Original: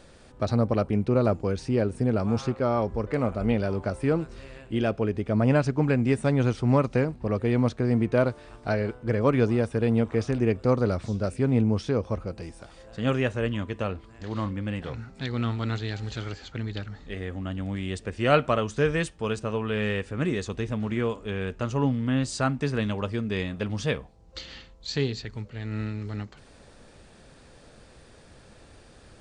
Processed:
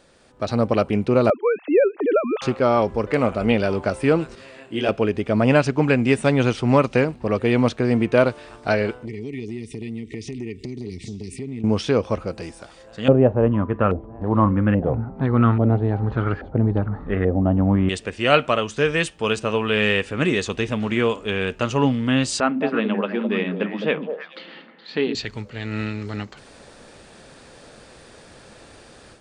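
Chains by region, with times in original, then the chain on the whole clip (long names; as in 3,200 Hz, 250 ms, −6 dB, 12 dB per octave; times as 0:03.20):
0:01.30–0:02.42: three sine waves on the formant tracks + high-pass filter 240 Hz
0:04.35–0:04.89: high-pass filter 140 Hz + micro pitch shift up and down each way 14 cents
0:09.05–0:11.64: linear-phase brick-wall band-stop 450–1,800 Hz + downward compressor, threshold −33 dBFS
0:13.08–0:17.89: low-shelf EQ 370 Hz +12 dB + auto-filter low-pass saw up 1.2 Hz 610–1,500 Hz
0:22.40–0:25.15: linear-phase brick-wall high-pass 160 Hz + high-frequency loss of the air 440 metres + echo through a band-pass that steps 105 ms, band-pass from 220 Hz, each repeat 1.4 octaves, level −1.5 dB
whole clip: low-shelf EQ 130 Hz −11.5 dB; automatic gain control gain up to 10 dB; dynamic equaliser 2,800 Hz, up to +6 dB, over −43 dBFS, Q 2.1; level −1.5 dB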